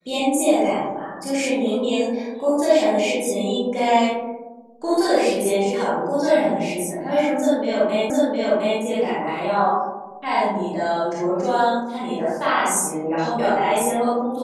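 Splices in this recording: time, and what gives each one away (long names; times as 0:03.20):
0:08.10: the same again, the last 0.71 s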